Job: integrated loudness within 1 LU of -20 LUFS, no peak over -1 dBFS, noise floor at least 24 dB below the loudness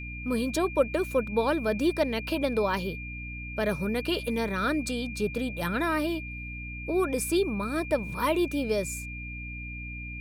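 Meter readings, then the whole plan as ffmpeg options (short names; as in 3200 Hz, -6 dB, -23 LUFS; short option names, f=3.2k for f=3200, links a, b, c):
hum 60 Hz; harmonics up to 300 Hz; hum level -37 dBFS; steady tone 2400 Hz; tone level -39 dBFS; loudness -29.0 LUFS; peak -11.5 dBFS; loudness target -20.0 LUFS
-> -af "bandreject=f=60:t=h:w=6,bandreject=f=120:t=h:w=6,bandreject=f=180:t=h:w=6,bandreject=f=240:t=h:w=6,bandreject=f=300:t=h:w=6"
-af "bandreject=f=2.4k:w=30"
-af "volume=9dB"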